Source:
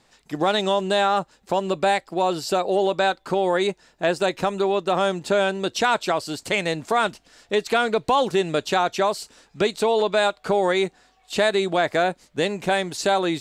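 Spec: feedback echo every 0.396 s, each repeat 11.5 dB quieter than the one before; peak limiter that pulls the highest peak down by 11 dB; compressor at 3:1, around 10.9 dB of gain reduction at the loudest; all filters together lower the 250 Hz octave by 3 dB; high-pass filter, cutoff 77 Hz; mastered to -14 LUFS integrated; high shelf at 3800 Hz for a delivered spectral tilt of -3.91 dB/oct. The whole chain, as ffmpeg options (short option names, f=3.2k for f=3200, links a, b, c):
-af "highpass=77,equalizer=f=250:t=o:g=-5,highshelf=f=3.8k:g=-5.5,acompressor=threshold=-32dB:ratio=3,alimiter=level_in=3dB:limit=-24dB:level=0:latency=1,volume=-3dB,aecho=1:1:396|792|1188:0.266|0.0718|0.0194,volume=23.5dB"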